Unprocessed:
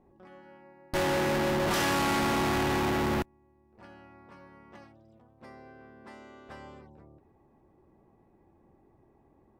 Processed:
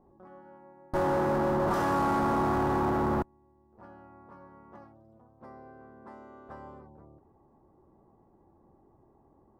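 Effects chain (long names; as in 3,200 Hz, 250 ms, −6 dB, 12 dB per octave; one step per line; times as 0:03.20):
high shelf with overshoot 1,700 Hz −12.5 dB, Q 1.5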